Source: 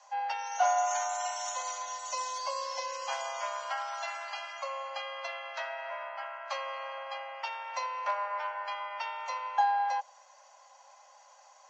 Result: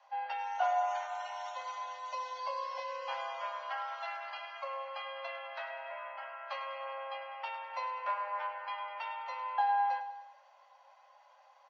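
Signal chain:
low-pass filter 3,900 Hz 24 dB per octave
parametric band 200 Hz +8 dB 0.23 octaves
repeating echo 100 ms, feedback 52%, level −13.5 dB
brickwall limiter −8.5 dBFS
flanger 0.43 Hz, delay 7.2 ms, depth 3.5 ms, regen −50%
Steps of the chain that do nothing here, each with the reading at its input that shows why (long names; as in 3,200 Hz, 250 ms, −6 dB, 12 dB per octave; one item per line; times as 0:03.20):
parametric band 200 Hz: nothing at its input below 450 Hz
brickwall limiter −8.5 dBFS: peak of its input −15.0 dBFS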